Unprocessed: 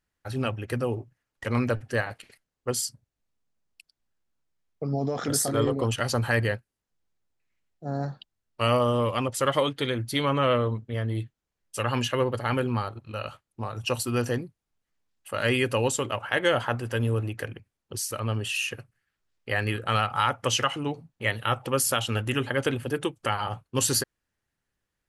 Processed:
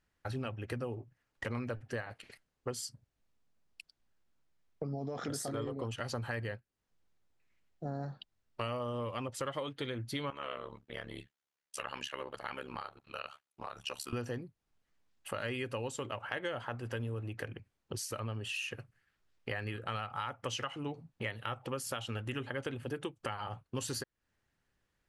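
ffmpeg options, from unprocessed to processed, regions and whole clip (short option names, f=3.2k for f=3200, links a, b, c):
-filter_complex "[0:a]asettb=1/sr,asplit=3[a][b][c];[a]atrim=end=10.304[d];[b]atrim=start=10.3:end=14.13,asetpts=PTS-STARTPTS,afade=t=in:d=0.004:c=qsin,afade=t=out:st=3.826:d=0.004:c=qsin,highpass=f=1.2k:p=1,tremolo=f=70:d=0.947[e];[c]atrim=start=14.126[f];[d][e]acrossfade=d=0.004:c1=hsin:c2=qsin[g];[g][f]acrossfade=d=0.004:c1=qsin:c2=hsin,highshelf=f=8.6k:g=-11,acompressor=threshold=-41dB:ratio=4,volume=3dB"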